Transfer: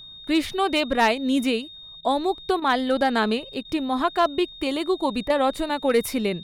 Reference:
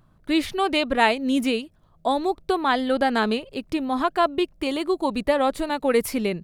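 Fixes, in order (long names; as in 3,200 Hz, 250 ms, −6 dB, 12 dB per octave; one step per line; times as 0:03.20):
clipped peaks rebuilt −11.5 dBFS
notch filter 3,700 Hz, Q 30
repair the gap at 0:02.01/0:02.60/0:03.63/0:05.28, 18 ms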